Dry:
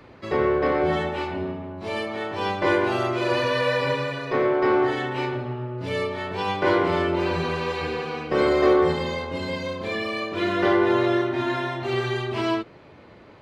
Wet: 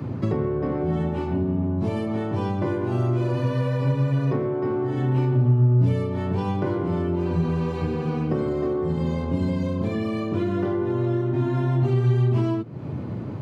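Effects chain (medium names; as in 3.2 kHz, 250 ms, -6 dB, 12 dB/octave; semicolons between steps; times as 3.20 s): high-pass 70 Hz 24 dB/octave; bass shelf 400 Hz +8 dB; compression 5:1, threshold -34 dBFS, peak gain reduction 20.5 dB; ten-band graphic EQ 125 Hz +11 dB, 250 Hz +5 dB, 500 Hz -3 dB, 2 kHz -7 dB, 4 kHz -7 dB; trim +7.5 dB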